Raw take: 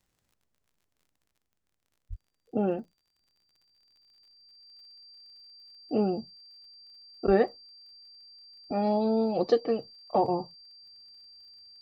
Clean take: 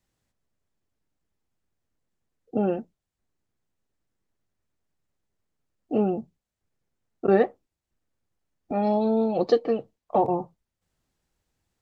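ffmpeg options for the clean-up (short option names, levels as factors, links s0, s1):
-filter_complex "[0:a]adeclick=t=4,bandreject=f=4700:w=30,asplit=3[s0][s1][s2];[s0]afade=t=out:st=2.09:d=0.02[s3];[s1]highpass=f=140:w=0.5412,highpass=f=140:w=1.3066,afade=t=in:st=2.09:d=0.02,afade=t=out:st=2.21:d=0.02[s4];[s2]afade=t=in:st=2.21:d=0.02[s5];[s3][s4][s5]amix=inputs=3:normalize=0,asplit=3[s6][s7][s8];[s6]afade=t=out:st=7.26:d=0.02[s9];[s7]highpass=f=140:w=0.5412,highpass=f=140:w=1.3066,afade=t=in:st=7.26:d=0.02,afade=t=out:st=7.38:d=0.02[s10];[s8]afade=t=in:st=7.38:d=0.02[s11];[s9][s10][s11]amix=inputs=3:normalize=0,asetnsamples=n=441:p=0,asendcmd='1.26 volume volume 3dB',volume=1"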